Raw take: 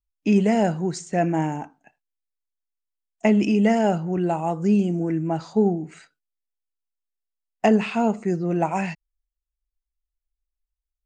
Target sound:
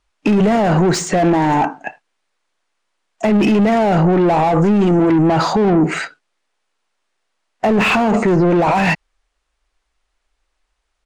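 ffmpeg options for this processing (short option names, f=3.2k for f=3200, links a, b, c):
-filter_complex "[0:a]aresample=22050,aresample=44100,asplit=2[a][b];[b]highpass=f=720:p=1,volume=22dB,asoftclip=type=tanh:threshold=-18dB[c];[a][c]amix=inputs=2:normalize=0,lowpass=f=1.3k:p=1,volume=-6dB,acontrast=81,alimiter=level_in=16dB:limit=-1dB:release=50:level=0:latency=1,volume=-6.5dB"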